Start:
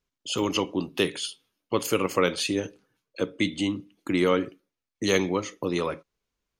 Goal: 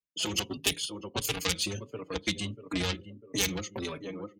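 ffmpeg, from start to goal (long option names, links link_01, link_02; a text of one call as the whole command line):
ffmpeg -i in.wav -filter_complex "[0:a]asplit=2[link_01][link_02];[link_02]adelay=971,lowpass=frequency=2000:poles=1,volume=-13dB,asplit=2[link_03][link_04];[link_04]adelay=971,lowpass=frequency=2000:poles=1,volume=0.42,asplit=2[link_05][link_06];[link_06]adelay=971,lowpass=frequency=2000:poles=1,volume=0.42,asplit=2[link_07][link_08];[link_08]adelay=971,lowpass=frequency=2000:poles=1,volume=0.42[link_09];[link_03][link_05][link_07][link_09]amix=inputs=4:normalize=0[link_10];[link_01][link_10]amix=inputs=2:normalize=0,adynamicequalizer=threshold=0.00794:dfrequency=800:dqfactor=1.8:tfrequency=800:tqfactor=1.8:attack=5:release=100:ratio=0.375:range=2:mode=cutabove:tftype=bell,aeval=exprs='0.398*(cos(1*acos(clip(val(0)/0.398,-1,1)))-cos(1*PI/2))+0.0251*(cos(3*acos(clip(val(0)/0.398,-1,1)))-cos(3*PI/2))+0.178*(cos(6*acos(clip(val(0)/0.398,-1,1)))-cos(6*PI/2))+0.00316*(cos(7*acos(clip(val(0)/0.398,-1,1)))-cos(7*PI/2))+0.126*(cos(8*acos(clip(val(0)/0.398,-1,1)))-cos(8*PI/2))':channel_layout=same,atempo=1.5,acrossover=split=160|2700[link_11][link_12][link_13];[link_11]highpass=60[link_14];[link_12]acompressor=threshold=-37dB:ratio=10[link_15];[link_14][link_15][link_13]amix=inputs=3:normalize=0,afftdn=noise_reduction=18:noise_floor=-54,asplit=2[link_16][link_17];[link_17]adelay=4.6,afreqshift=1.5[link_18];[link_16][link_18]amix=inputs=2:normalize=1,volume=6dB" out.wav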